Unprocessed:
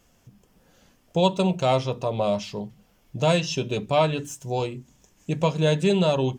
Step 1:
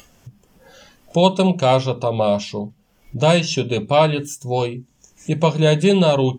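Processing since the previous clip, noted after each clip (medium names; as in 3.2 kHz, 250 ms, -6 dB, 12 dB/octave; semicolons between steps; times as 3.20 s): upward compressor, threshold -36 dBFS; spectral noise reduction 11 dB; trim +6 dB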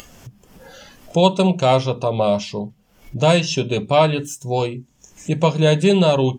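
upward compressor, threshold -35 dBFS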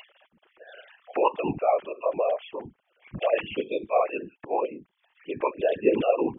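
formants replaced by sine waves; whisper effect; tape noise reduction on one side only encoder only; trim -9 dB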